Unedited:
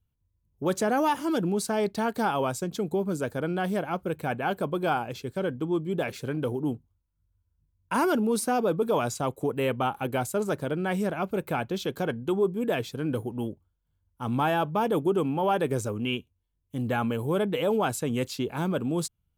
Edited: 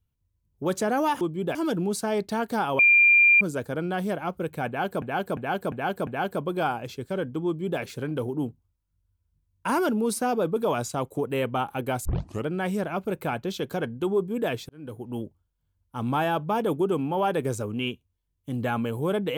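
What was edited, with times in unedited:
2.45–3.07 bleep 2390 Hz -13.5 dBFS
4.33–4.68 loop, 5 plays
5.72–6.06 copy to 1.21
10.31 tape start 0.41 s
12.95–13.49 fade in

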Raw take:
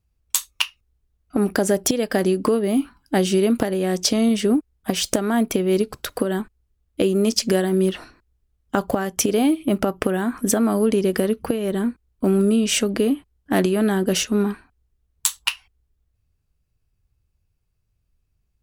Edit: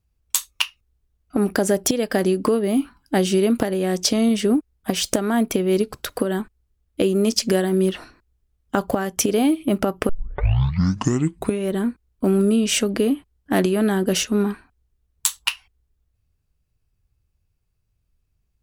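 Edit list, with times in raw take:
10.09 tape start 1.61 s

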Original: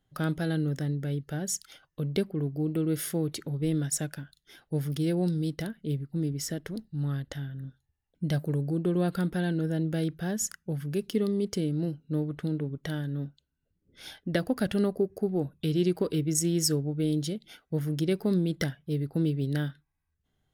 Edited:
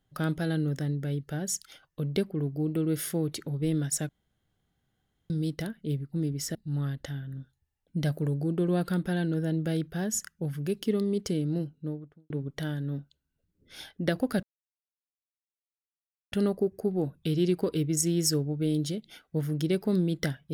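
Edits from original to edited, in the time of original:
4.09–5.3 room tone
6.55–6.82 cut
11.81–12.57 studio fade out
14.7 insert silence 1.89 s

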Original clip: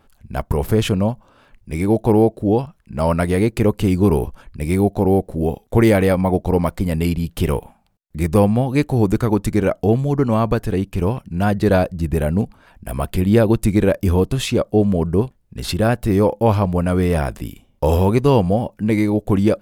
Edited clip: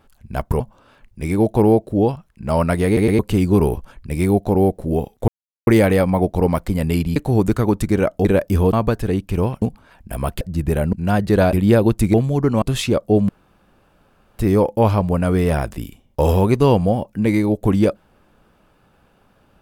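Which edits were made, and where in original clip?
0.6–1.1 cut
3.36 stutter in place 0.11 s, 3 plays
5.78 insert silence 0.39 s
7.27–8.8 cut
9.89–10.37 swap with 13.78–14.26
11.26–11.86 swap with 12.38–13.17
14.93–16.03 room tone

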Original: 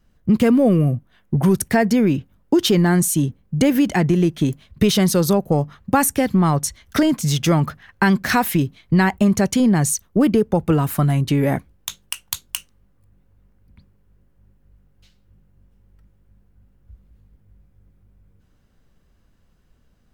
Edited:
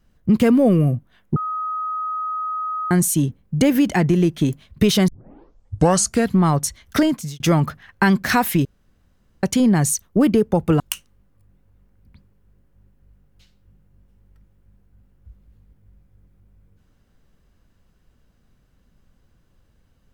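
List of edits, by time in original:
1.36–2.91 bleep 1260 Hz -22.5 dBFS
5.08 tape start 1.28 s
7.02–7.4 fade out
8.65–9.43 room tone
10.8–12.43 cut

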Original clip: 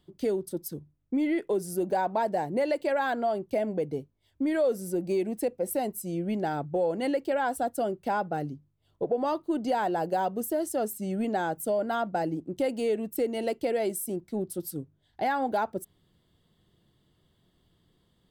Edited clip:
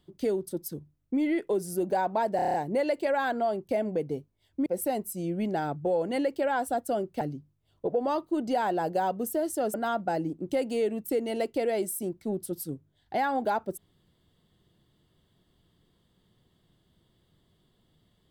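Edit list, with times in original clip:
2.36 stutter 0.03 s, 7 plays
4.48–5.55 cut
8.1–8.38 cut
10.91–11.81 cut

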